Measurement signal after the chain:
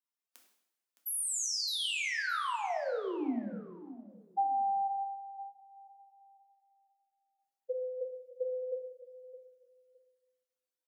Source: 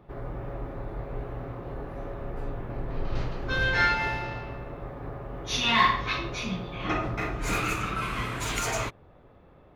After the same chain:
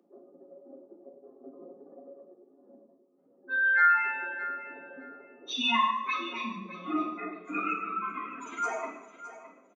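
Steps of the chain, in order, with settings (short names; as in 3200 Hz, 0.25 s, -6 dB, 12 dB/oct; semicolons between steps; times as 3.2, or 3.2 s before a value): spectral contrast raised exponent 2.8; steep high-pass 190 Hz 96 dB/oct; notches 50/100/150/200/250/300/350/400 Hz; on a send: feedback echo 0.614 s, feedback 20%, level -14 dB; on the sum: two-slope reverb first 0.74 s, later 2 s, from -20 dB, DRR 0.5 dB; gain -3.5 dB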